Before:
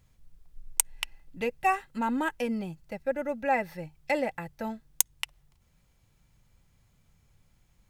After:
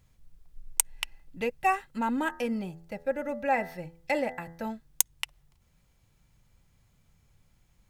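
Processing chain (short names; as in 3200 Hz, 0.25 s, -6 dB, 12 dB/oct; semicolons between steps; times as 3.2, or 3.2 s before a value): 2.15–4.67 de-hum 83.56 Hz, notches 24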